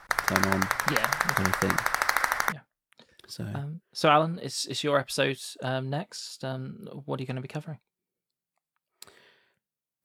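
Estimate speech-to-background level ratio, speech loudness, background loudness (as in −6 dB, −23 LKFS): −4.0 dB, −30.5 LKFS, −26.5 LKFS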